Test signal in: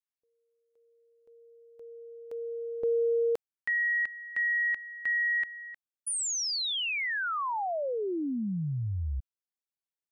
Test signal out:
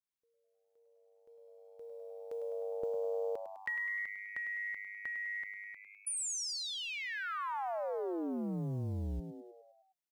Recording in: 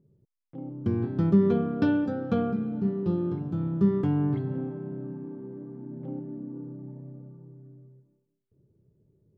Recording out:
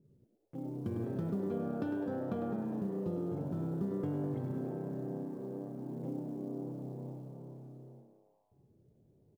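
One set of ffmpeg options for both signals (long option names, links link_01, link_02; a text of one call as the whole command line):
ffmpeg -i in.wav -filter_complex "[0:a]acrusher=bits=9:mode=log:mix=0:aa=0.000001,acompressor=threshold=-35dB:ratio=6:attack=39:release=62:knee=6,asplit=2[link_01][link_02];[link_02]asplit=7[link_03][link_04][link_05][link_06][link_07][link_08][link_09];[link_03]adelay=102,afreqshift=100,volume=-9dB[link_10];[link_04]adelay=204,afreqshift=200,volume=-13.4dB[link_11];[link_05]adelay=306,afreqshift=300,volume=-17.9dB[link_12];[link_06]adelay=408,afreqshift=400,volume=-22.3dB[link_13];[link_07]adelay=510,afreqshift=500,volume=-26.7dB[link_14];[link_08]adelay=612,afreqshift=600,volume=-31.2dB[link_15];[link_09]adelay=714,afreqshift=700,volume=-35.6dB[link_16];[link_10][link_11][link_12][link_13][link_14][link_15][link_16]amix=inputs=7:normalize=0[link_17];[link_01][link_17]amix=inputs=2:normalize=0,adynamicequalizer=threshold=0.00447:dfrequency=1600:dqfactor=0.7:tfrequency=1600:tqfactor=0.7:attack=5:release=100:ratio=0.375:range=3:mode=cutabove:tftype=highshelf,volume=-2dB" out.wav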